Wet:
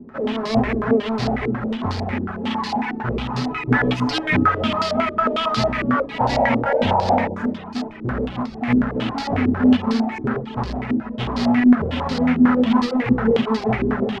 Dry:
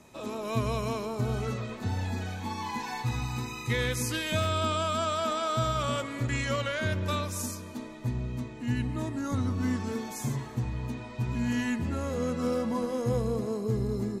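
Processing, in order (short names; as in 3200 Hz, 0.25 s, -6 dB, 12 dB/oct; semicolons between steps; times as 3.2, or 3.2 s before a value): half-waves squared off; 3.34–4.62 comb 7 ms, depth 98%; echo 0.386 s -17 dB; on a send at -1 dB: reverb RT60 0.35 s, pre-delay 3 ms; on the sum: reverb removal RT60 0.61 s; in parallel at -11 dB: wrapped overs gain 23 dB; 6.19–7.35 on the sum: painted sound noise 450–970 Hz -25 dBFS; stepped low-pass 11 Hz 340–4600 Hz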